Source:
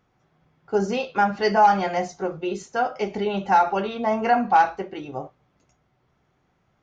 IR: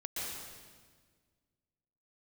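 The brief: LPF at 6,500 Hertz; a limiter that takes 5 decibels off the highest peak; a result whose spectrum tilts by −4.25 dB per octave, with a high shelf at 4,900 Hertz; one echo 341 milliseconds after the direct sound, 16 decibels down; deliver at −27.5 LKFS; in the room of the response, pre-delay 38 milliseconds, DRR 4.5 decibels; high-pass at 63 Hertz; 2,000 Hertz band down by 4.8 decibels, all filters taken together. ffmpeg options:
-filter_complex "[0:a]highpass=63,lowpass=6500,equalizer=frequency=2000:width_type=o:gain=-8.5,highshelf=frequency=4900:gain=7.5,alimiter=limit=-13dB:level=0:latency=1,aecho=1:1:341:0.158,asplit=2[link_01][link_02];[1:a]atrim=start_sample=2205,adelay=38[link_03];[link_02][link_03]afir=irnorm=-1:irlink=0,volume=-7dB[link_04];[link_01][link_04]amix=inputs=2:normalize=0,volume=-3.5dB"

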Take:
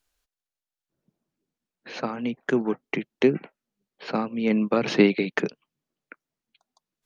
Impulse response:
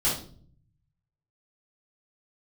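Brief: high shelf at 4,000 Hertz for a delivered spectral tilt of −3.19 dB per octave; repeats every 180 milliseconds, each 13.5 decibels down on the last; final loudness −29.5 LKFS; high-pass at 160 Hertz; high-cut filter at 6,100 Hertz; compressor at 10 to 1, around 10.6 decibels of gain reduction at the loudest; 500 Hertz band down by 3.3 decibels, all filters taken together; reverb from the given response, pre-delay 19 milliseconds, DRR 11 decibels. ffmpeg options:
-filter_complex "[0:a]highpass=160,lowpass=6100,equalizer=frequency=500:width_type=o:gain=-4.5,highshelf=frequency=4000:gain=8,acompressor=threshold=-25dB:ratio=10,aecho=1:1:180|360:0.211|0.0444,asplit=2[link_01][link_02];[1:a]atrim=start_sample=2205,adelay=19[link_03];[link_02][link_03]afir=irnorm=-1:irlink=0,volume=-21.5dB[link_04];[link_01][link_04]amix=inputs=2:normalize=0,volume=1.5dB"

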